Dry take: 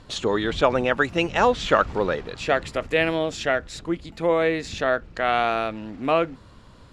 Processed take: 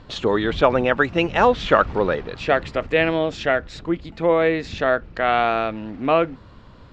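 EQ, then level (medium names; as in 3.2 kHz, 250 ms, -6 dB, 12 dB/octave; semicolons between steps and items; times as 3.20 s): distance through air 140 m; +3.5 dB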